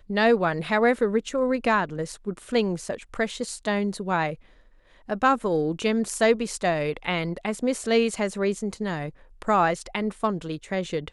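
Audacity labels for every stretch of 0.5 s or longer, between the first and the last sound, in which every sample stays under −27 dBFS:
4.330000	5.100000	silence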